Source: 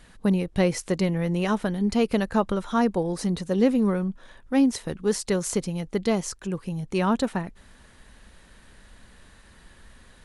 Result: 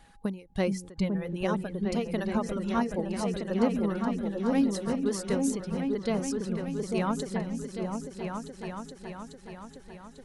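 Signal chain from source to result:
steady tone 820 Hz −55 dBFS
reverb reduction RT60 1.9 s
echo whose low-pass opens from repeat to repeat 423 ms, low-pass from 200 Hz, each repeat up 2 octaves, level 0 dB
every ending faded ahead of time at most 150 dB per second
level −5.5 dB

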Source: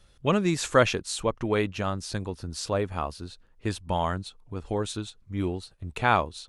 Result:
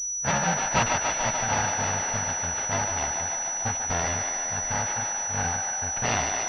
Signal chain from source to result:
samples in bit-reversed order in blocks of 128 samples
feedback echo with a high-pass in the loop 146 ms, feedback 83%, high-pass 1,000 Hz, level −5.5 dB
switching amplifier with a slow clock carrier 5,900 Hz

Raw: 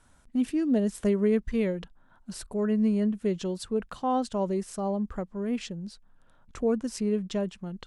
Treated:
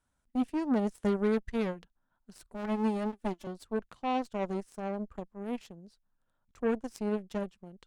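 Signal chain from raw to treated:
0:02.54–0:03.47: lower of the sound and its delayed copy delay 3.4 ms
harmonic generator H 7 −19 dB, 8 −27 dB, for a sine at −14.5 dBFS
level −4 dB

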